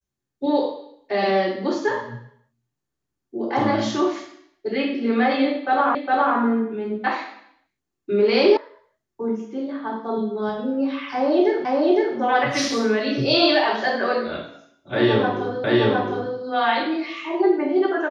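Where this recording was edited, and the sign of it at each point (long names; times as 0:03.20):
0:05.95: the same again, the last 0.41 s
0:08.57: cut off before it has died away
0:11.65: the same again, the last 0.51 s
0:15.64: the same again, the last 0.71 s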